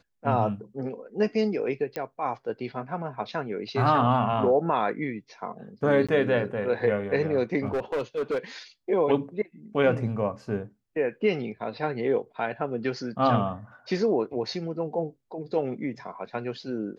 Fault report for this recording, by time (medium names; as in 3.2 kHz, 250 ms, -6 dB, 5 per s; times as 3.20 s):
1.96 s: pop -17 dBFS
6.07–6.09 s: dropout 16 ms
7.65–8.39 s: clipped -23.5 dBFS